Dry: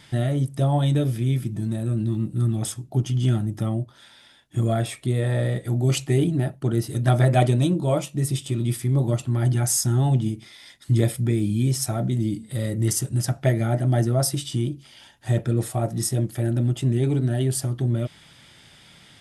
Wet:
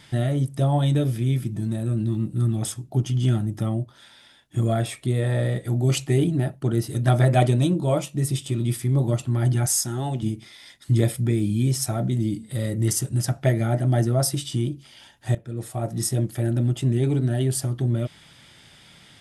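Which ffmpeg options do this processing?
-filter_complex "[0:a]asettb=1/sr,asplit=3[a][b][c];[a]atrim=end=9.664[d];[b]atrim=start=9.66:end=10.23,asetpts=PTS-STARTPTS,afade=t=in:d=0.004:c=qsin,afade=t=out:st=0.566:d=0.004:c=qsin,highpass=f=340:p=1[e];[c]atrim=start=10.226[f];[d][e]acrossfade=d=0.004:c1=hsin:c2=qsin[g];[g][f]acrossfade=d=0.004:c1=qsin:c2=hsin,asplit=2[h][i];[h]atrim=end=15.35,asetpts=PTS-STARTPTS,afade=t=out:st=15.346:d=0.004:c=hsin:silence=0.1[j];[i]atrim=start=15.35,asetpts=PTS-STARTPTS,afade=t=in:d=0.7:silence=0.1[k];[j][k]concat=n=2:v=0:a=1"

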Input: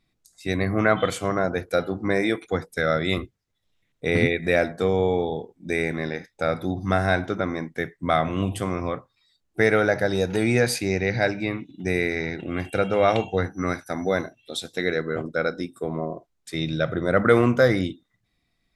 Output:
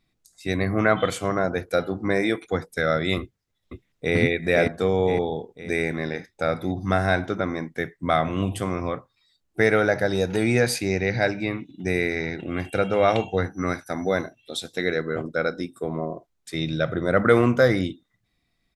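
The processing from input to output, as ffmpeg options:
-filter_complex "[0:a]asplit=2[a][b];[b]afade=t=in:st=3.2:d=0.01,afade=t=out:st=4.16:d=0.01,aecho=0:1:510|1020|1530|2040|2550|3060:0.794328|0.357448|0.160851|0.0723832|0.0325724|0.0146576[c];[a][c]amix=inputs=2:normalize=0"

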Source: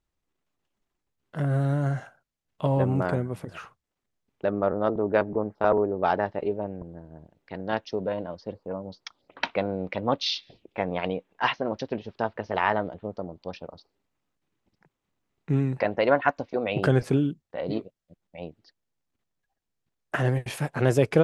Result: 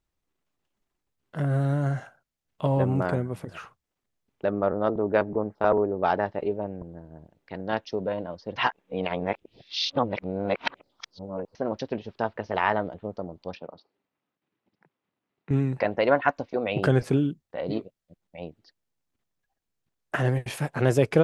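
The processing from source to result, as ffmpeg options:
-filter_complex "[0:a]asettb=1/sr,asplit=3[a][b][c];[a]atrim=end=13.554[d];[b]atrim=start=13.55:end=15.51,asetpts=PTS-STARTPTS,afade=t=in:d=0.004:c=qsin,afade=t=out:st=1.956:d=0.004:c=qsin,highpass=160,lowpass=3.6k[e];[c]atrim=start=15.506[f];[d][e]acrossfade=d=0.004:c1=hsin:c2=qsin[g];[g][f]acrossfade=d=0.004:c1=qsin:c2=hsin,asplit=3[h][i][j];[h]atrim=end=8.562[k];[i]atrim=start=8.558:end=11.552,asetpts=PTS-STARTPTS,areverse[l];[j]atrim=start=11.548[m];[k][l]acrossfade=d=0.004:c1=hsin:c2=hsin[n];[n][m]acrossfade=d=0.004:c1=hsin:c2=hsin"

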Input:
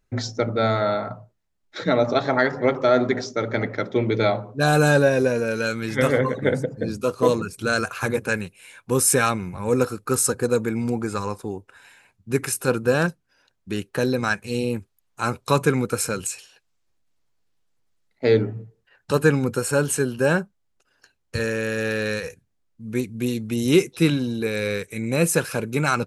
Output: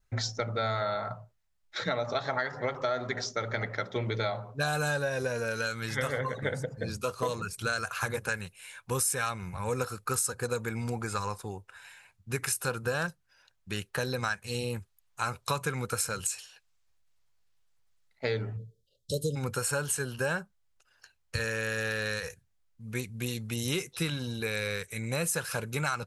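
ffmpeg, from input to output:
-filter_complex "[0:a]asplit=3[a][b][c];[a]afade=t=out:st=18.56:d=0.02[d];[b]asuperstop=centerf=1400:order=20:qfactor=0.54,afade=t=in:st=18.56:d=0.02,afade=t=out:st=19.35:d=0.02[e];[c]afade=t=in:st=19.35:d=0.02[f];[d][e][f]amix=inputs=3:normalize=0,equalizer=f=290:t=o:w=1.6:g=-14,acompressor=threshold=-27dB:ratio=5,adynamicequalizer=threshold=0.00224:dfrequency=2400:dqfactor=5:tfrequency=2400:tqfactor=5:attack=5:release=100:ratio=0.375:range=3:mode=cutabove:tftype=bell"

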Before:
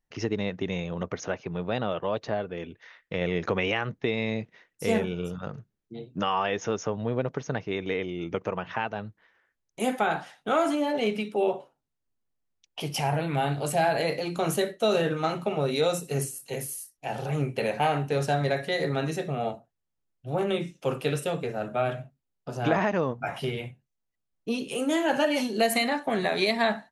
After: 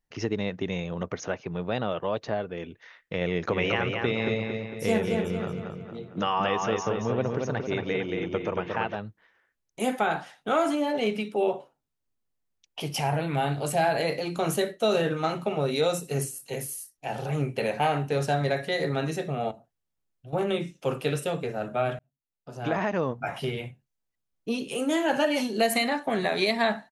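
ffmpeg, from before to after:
-filter_complex "[0:a]asplit=3[a][b][c];[a]afade=t=out:st=3.51:d=0.02[d];[b]asplit=2[e][f];[f]adelay=227,lowpass=f=4.8k:p=1,volume=-4dB,asplit=2[g][h];[h]adelay=227,lowpass=f=4.8k:p=1,volume=0.5,asplit=2[i][j];[j]adelay=227,lowpass=f=4.8k:p=1,volume=0.5,asplit=2[k][l];[l]adelay=227,lowpass=f=4.8k:p=1,volume=0.5,asplit=2[m][n];[n]adelay=227,lowpass=f=4.8k:p=1,volume=0.5,asplit=2[o][p];[p]adelay=227,lowpass=f=4.8k:p=1,volume=0.5[q];[e][g][i][k][m][o][q]amix=inputs=7:normalize=0,afade=t=in:st=3.51:d=0.02,afade=t=out:st=8.95:d=0.02[r];[c]afade=t=in:st=8.95:d=0.02[s];[d][r][s]amix=inputs=3:normalize=0,asettb=1/sr,asplit=3[t][u][v];[t]atrim=end=19.514[w];[u]atrim=start=19.51:end=20.33,asetpts=PTS-STARTPTS,afade=t=in:d=0.004:c=qsin,afade=t=out:st=0.816:d=0.004:c=qsin,acompressor=threshold=-44dB:ratio=2.5:attack=3.2:release=140:knee=1:detection=peak[x];[v]atrim=start=20.326[y];[w][x]acrossfade=d=0.004:c1=hsin:c2=qsin[z];[z][y]acrossfade=d=0.004:c1=qsin:c2=hsin,asplit=2[aa][ab];[aa]atrim=end=21.99,asetpts=PTS-STARTPTS,afade=t=out:st=21.986:d=0.004:c=hsin[ac];[ab]atrim=start=21.99,asetpts=PTS-STARTPTS,afade=t=in:d=1.11[ad];[ac][ad]concat=n=2:v=0:a=1"

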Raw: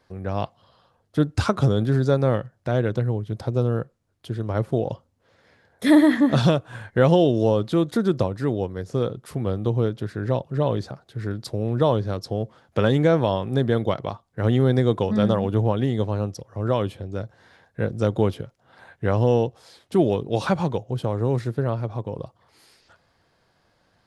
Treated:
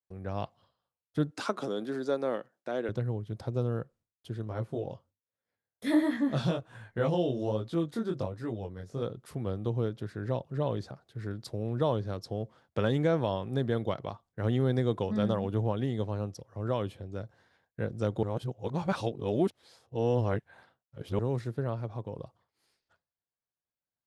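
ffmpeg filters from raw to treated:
-filter_complex "[0:a]asettb=1/sr,asplit=3[a][b][c];[a]atrim=end=1.314[d];[b]atrim=start=1.31:end=2.89,asetpts=PTS-STARTPTS,afade=t=in:d=0.004:c=qsin,afade=t=out:st=1.576:d=0.004:c=qsin,highpass=f=240:w=0.5412,highpass=f=240:w=1.3066[e];[c]atrim=start=2.886[f];[d][e]acrossfade=d=0.004:c1=hsin:c2=qsin[g];[g][f]acrossfade=d=0.004:c1=qsin:c2=hsin,asplit=3[h][i][j];[h]afade=t=out:st=4.44:d=0.02[k];[i]flanger=delay=17:depth=6.1:speed=1.3,afade=t=in:st=4.44:d=0.02,afade=t=out:st=9.01:d=0.02[l];[j]afade=t=in:st=9.01:d=0.02[m];[k][l][m]amix=inputs=3:normalize=0,asplit=3[n][o][p];[n]atrim=end=18.232[q];[o]atrim=start=18.228:end=21.192,asetpts=PTS-STARTPTS,areverse[r];[p]atrim=start=21.188[s];[q][r]acrossfade=d=0.004:c1=hsin:c2=hsin[t];[t][s]acrossfade=d=0.004:c1=hsin:c2=hsin,agate=range=-33dB:threshold=-47dB:ratio=3:detection=peak,volume=-8.5dB"

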